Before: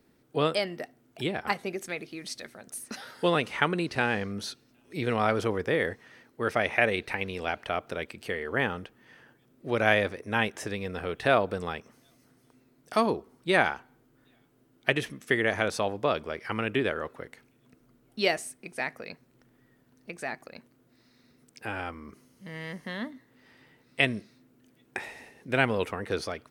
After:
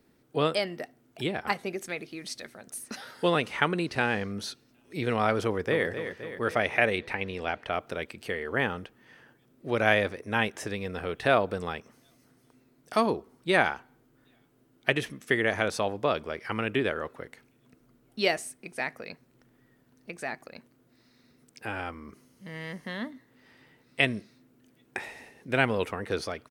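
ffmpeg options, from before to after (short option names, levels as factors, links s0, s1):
-filter_complex "[0:a]asplit=2[s0][s1];[s1]afade=t=in:st=5.44:d=0.01,afade=t=out:st=5.86:d=0.01,aecho=0:1:260|520|780|1040|1300|1560|1820:0.354813|0.212888|0.127733|0.0766397|0.0459838|0.0275903|0.0165542[s2];[s0][s2]amix=inputs=2:normalize=0,asettb=1/sr,asplit=3[s3][s4][s5];[s3]atrim=end=6.984[s6];[s4]atrim=start=6.98:end=7.73,asetpts=PTS-STARTPTS,afade=t=in:d=0.004:c=qsin,afade=t=out:st=0.746:d=0.004:c=qsin,highshelf=f=7400:g=-10[s7];[s5]atrim=start=7.726[s8];[s6][s7]acrossfade=d=0.004:c1=hsin:c2=qsin[s9];[s9][s8]acrossfade=d=0.004:c1=qsin:c2=hsin"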